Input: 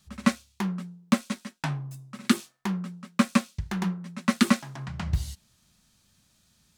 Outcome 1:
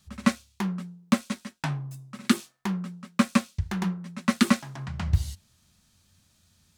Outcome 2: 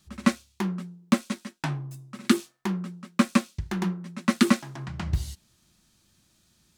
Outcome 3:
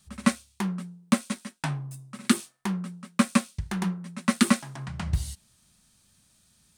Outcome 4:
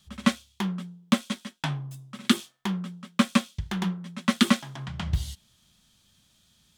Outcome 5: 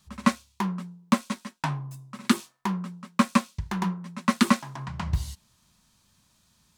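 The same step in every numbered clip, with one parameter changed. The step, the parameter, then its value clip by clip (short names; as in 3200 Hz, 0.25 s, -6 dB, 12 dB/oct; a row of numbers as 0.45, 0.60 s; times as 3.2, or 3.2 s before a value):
bell, frequency: 89, 340, 9000, 3300, 1000 Hz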